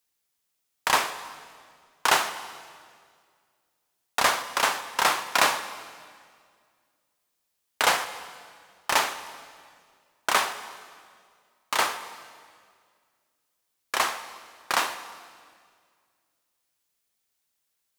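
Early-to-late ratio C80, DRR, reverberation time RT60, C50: 12.5 dB, 10.0 dB, 2.0 s, 11.5 dB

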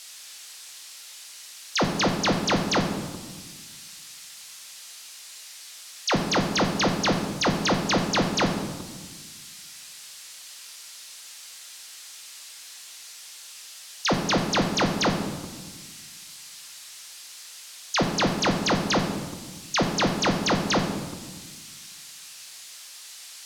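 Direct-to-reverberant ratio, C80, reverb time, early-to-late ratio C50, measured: 2.0 dB, 7.5 dB, 1.4 s, 6.0 dB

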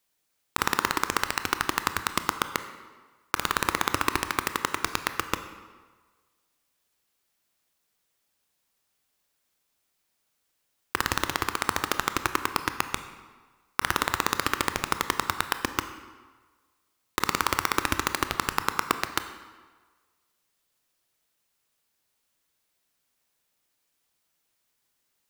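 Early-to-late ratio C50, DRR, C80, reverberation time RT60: 10.5 dB, 9.0 dB, 12.0 dB, 1.5 s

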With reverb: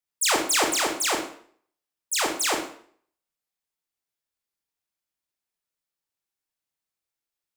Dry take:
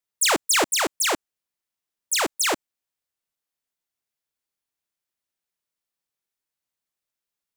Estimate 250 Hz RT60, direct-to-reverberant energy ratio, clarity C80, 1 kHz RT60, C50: 0.55 s, 1.0 dB, 10.0 dB, 0.55 s, 6.5 dB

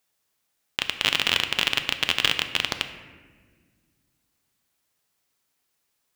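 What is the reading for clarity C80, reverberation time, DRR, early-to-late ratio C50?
11.0 dB, 1.6 s, 7.5 dB, 10.0 dB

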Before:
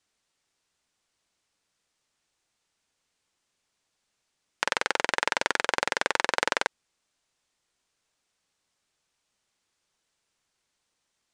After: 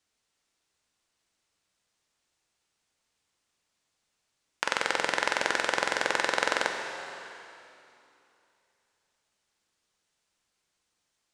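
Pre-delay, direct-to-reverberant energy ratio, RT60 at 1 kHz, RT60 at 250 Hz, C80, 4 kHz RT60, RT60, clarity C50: 4 ms, 3.5 dB, 2.9 s, 3.0 s, 5.5 dB, 2.7 s, 2.9 s, 4.5 dB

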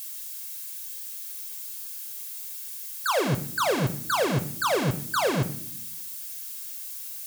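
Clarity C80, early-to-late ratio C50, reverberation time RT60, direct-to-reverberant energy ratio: 17.5 dB, 14.5 dB, 0.65 s, 8.5 dB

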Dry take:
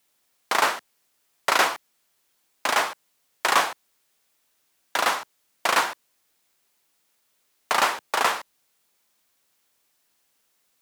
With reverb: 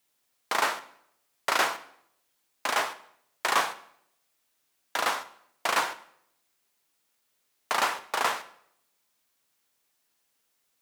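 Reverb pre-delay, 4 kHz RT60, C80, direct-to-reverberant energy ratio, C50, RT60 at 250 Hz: 5 ms, 0.60 s, 18.5 dB, 11.0 dB, 15.5 dB, 0.75 s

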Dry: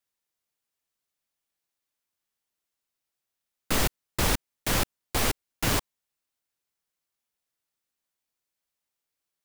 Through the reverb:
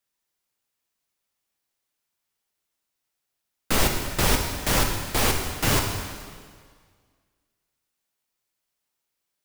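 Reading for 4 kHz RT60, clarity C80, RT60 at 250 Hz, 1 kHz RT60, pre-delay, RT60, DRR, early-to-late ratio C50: 1.7 s, 6.0 dB, 1.7 s, 1.8 s, 4 ms, 1.8 s, 2.0 dB, 4.5 dB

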